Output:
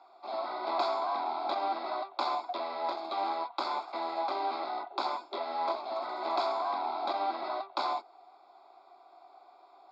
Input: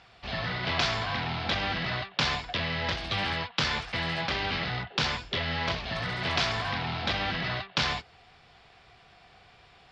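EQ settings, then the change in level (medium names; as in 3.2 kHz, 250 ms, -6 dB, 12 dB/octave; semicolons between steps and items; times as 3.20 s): boxcar filter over 15 samples; steep high-pass 350 Hz 36 dB/octave; static phaser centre 470 Hz, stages 6; +6.0 dB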